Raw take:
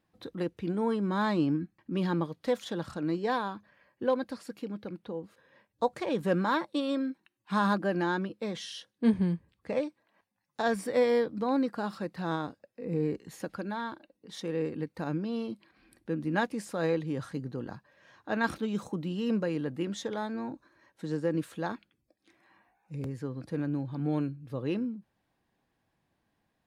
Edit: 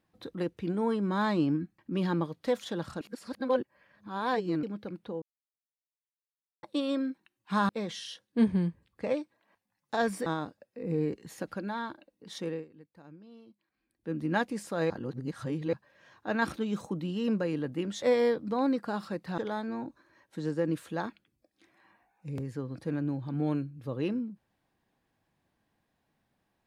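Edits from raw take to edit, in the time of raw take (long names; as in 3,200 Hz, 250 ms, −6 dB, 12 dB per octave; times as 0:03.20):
0:03.01–0:04.63: reverse
0:05.22–0:06.63: silence
0:07.69–0:08.35: remove
0:10.92–0:12.28: move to 0:20.04
0:14.49–0:16.17: duck −19 dB, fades 0.18 s
0:16.92–0:17.75: reverse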